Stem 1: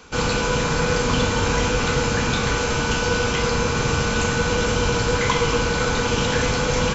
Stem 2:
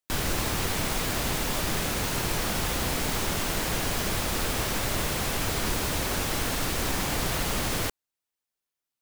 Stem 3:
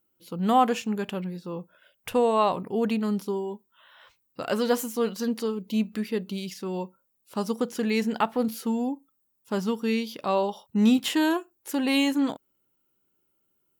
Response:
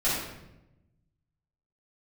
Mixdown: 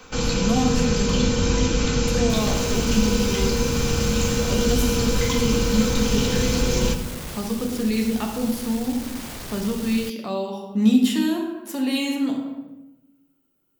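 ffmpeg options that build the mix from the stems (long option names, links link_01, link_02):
-filter_complex "[0:a]aecho=1:1:3.9:0.34,volume=-1.5dB,asplit=2[link_01][link_02];[link_02]volume=-16dB[link_03];[1:a]volume=30.5dB,asoftclip=hard,volume=-30.5dB,adelay=2200,volume=-2dB[link_04];[2:a]volume=-2dB,asplit=2[link_05][link_06];[link_06]volume=-9.5dB[link_07];[3:a]atrim=start_sample=2205[link_08];[link_03][link_07]amix=inputs=2:normalize=0[link_09];[link_09][link_08]afir=irnorm=-1:irlink=0[link_10];[link_01][link_04][link_05][link_10]amix=inputs=4:normalize=0,acrossover=split=360|3000[link_11][link_12][link_13];[link_12]acompressor=threshold=-38dB:ratio=2[link_14];[link_11][link_14][link_13]amix=inputs=3:normalize=0"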